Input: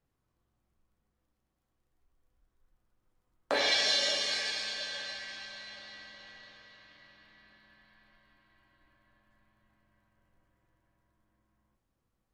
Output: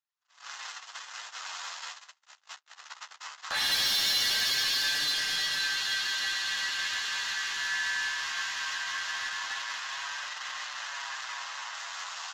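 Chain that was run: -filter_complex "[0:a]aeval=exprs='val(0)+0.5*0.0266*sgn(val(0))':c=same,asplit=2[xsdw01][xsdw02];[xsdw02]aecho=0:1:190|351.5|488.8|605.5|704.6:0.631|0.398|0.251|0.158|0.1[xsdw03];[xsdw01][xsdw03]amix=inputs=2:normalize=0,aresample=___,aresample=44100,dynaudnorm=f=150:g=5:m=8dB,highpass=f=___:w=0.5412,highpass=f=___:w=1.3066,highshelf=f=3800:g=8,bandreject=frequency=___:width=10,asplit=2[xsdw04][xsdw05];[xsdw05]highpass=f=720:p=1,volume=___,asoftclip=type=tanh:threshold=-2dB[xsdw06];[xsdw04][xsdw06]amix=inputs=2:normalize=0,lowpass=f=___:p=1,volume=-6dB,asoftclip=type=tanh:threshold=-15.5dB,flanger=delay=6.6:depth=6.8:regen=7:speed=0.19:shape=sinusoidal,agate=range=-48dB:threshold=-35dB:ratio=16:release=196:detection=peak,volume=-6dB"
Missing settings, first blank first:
16000, 930, 930, 2300, 9dB, 4800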